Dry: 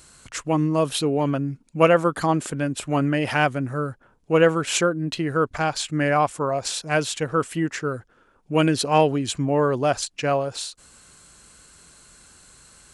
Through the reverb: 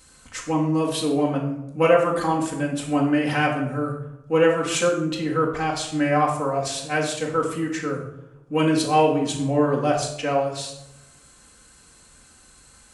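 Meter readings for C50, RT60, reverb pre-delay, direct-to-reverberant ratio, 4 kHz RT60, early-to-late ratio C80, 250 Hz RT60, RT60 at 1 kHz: 6.0 dB, 0.95 s, 4 ms, -3.0 dB, 0.50 s, 8.5 dB, 1.1 s, 0.80 s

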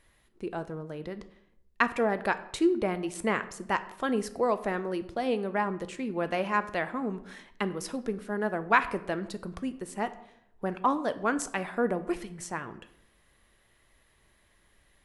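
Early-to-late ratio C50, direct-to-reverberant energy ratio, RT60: 15.0 dB, 11.0 dB, 0.75 s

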